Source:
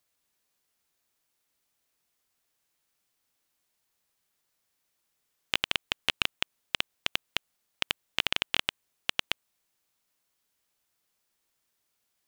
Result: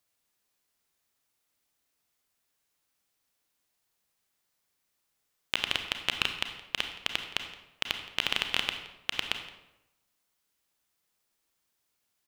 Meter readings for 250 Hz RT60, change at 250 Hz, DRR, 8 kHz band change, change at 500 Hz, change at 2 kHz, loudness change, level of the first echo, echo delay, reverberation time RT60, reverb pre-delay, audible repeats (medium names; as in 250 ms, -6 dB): 0.95 s, -0.5 dB, 6.0 dB, -0.5 dB, -0.5 dB, -0.5 dB, -0.5 dB, -20.0 dB, 170 ms, 0.90 s, 29 ms, 1